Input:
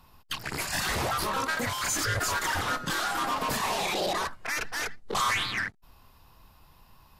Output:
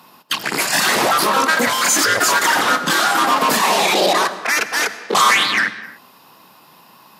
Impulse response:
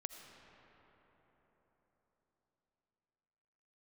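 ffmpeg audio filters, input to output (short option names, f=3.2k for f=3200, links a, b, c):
-filter_complex "[0:a]highpass=f=190:w=0.5412,highpass=f=190:w=1.3066,asplit=2[a][b];[1:a]atrim=start_sample=2205,afade=t=out:st=0.35:d=0.01,atrim=end_sample=15876[c];[b][c]afir=irnorm=-1:irlink=0,volume=5dB[d];[a][d]amix=inputs=2:normalize=0,volume=7dB"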